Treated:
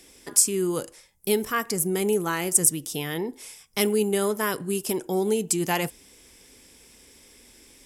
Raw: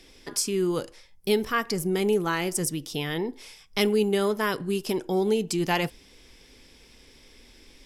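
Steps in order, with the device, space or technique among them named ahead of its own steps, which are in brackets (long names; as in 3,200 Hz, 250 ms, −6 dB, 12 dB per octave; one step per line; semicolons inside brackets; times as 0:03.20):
budget condenser microphone (high-pass filter 78 Hz 6 dB per octave; high shelf with overshoot 6,100 Hz +9 dB, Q 1.5)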